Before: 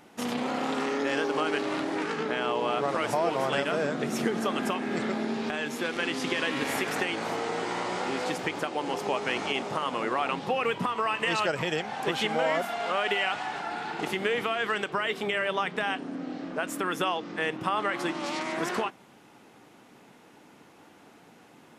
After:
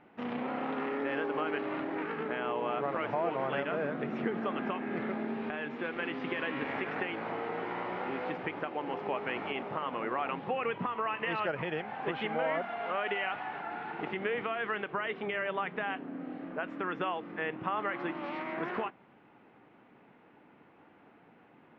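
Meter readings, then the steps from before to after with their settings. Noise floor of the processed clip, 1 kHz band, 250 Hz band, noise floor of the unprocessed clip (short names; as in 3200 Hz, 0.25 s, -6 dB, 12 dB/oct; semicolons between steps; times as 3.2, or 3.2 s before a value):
-60 dBFS, -5.0 dB, -5.0 dB, -55 dBFS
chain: LPF 2600 Hz 24 dB/oct; gain -5 dB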